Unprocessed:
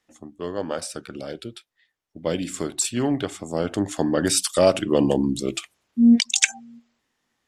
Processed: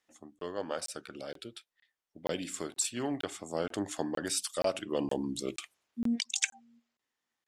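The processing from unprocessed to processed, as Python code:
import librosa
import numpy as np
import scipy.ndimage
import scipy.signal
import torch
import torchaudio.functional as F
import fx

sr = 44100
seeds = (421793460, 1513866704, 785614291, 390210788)

y = fx.low_shelf(x, sr, hz=290.0, db=-10.0)
y = fx.rider(y, sr, range_db=3, speed_s=0.5)
y = fx.buffer_crackle(y, sr, first_s=0.39, period_s=0.47, block=1024, kind='zero')
y = F.gain(torch.from_numpy(y), -8.5).numpy()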